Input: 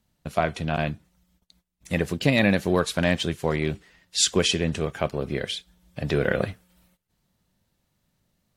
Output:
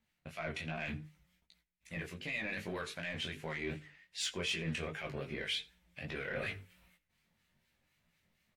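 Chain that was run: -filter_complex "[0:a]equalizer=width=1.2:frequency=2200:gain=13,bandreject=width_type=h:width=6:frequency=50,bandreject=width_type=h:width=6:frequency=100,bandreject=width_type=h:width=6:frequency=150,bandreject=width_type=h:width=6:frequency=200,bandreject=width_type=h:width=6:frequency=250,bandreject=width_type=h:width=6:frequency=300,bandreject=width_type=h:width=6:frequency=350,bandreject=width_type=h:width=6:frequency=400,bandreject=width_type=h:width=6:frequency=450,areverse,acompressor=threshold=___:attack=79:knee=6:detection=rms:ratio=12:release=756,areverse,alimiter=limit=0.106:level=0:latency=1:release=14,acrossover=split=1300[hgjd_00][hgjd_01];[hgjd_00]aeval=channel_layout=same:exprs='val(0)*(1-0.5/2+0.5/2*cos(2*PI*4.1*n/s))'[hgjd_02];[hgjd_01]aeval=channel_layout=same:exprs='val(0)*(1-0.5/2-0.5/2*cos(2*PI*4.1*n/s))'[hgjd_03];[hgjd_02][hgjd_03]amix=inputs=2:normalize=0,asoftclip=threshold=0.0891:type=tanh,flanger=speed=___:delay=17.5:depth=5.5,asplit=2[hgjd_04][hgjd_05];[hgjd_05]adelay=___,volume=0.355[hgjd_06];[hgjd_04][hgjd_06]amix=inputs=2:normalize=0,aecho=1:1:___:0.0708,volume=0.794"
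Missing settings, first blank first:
0.0562, 2.6, 13, 85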